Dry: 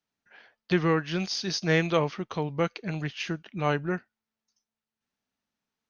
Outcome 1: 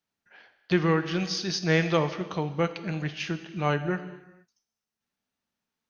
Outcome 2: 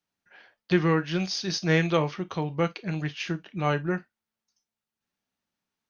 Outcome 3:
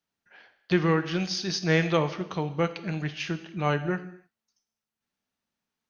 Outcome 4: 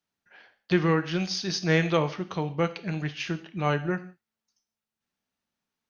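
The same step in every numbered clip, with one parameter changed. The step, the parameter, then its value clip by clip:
non-linear reverb, gate: 500, 80, 320, 200 ms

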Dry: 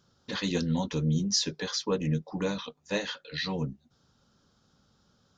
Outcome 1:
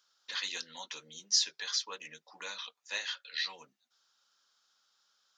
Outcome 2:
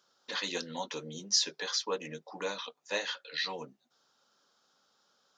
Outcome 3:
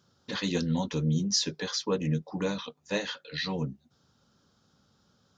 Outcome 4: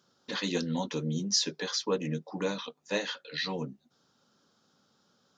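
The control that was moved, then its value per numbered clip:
HPF, cutoff: 1500, 560, 64, 220 Hz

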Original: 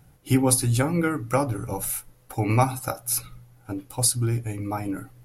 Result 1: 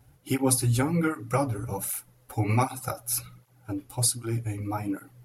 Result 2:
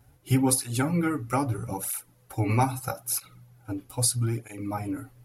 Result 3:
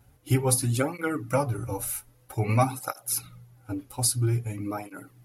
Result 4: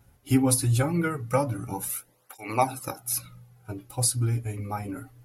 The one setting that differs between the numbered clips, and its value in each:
tape flanging out of phase, nulls at: 1.3, 0.78, 0.51, 0.21 Hz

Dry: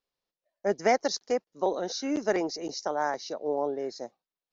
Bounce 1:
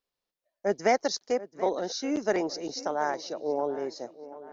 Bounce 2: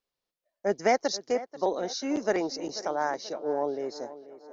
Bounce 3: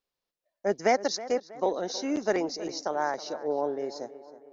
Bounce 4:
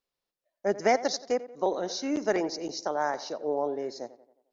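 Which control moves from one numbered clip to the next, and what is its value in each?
tape echo, time: 731, 485, 320, 88 ms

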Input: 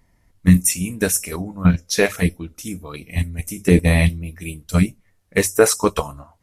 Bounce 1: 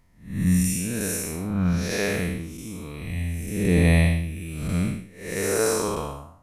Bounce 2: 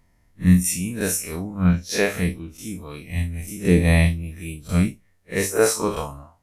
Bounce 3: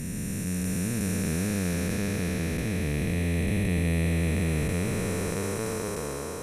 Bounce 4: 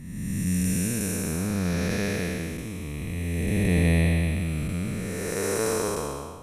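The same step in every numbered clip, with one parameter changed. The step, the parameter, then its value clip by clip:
time blur, width: 257, 87, 1780, 634 ms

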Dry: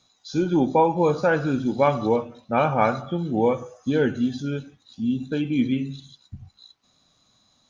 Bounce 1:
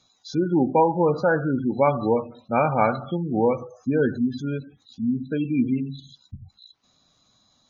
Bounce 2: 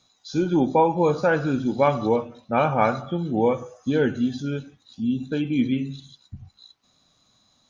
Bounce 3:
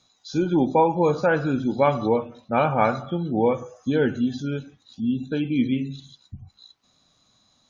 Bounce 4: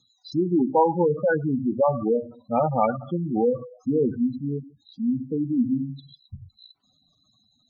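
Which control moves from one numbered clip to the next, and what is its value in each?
spectral gate, under each frame's peak: -25, -60, -45, -10 dB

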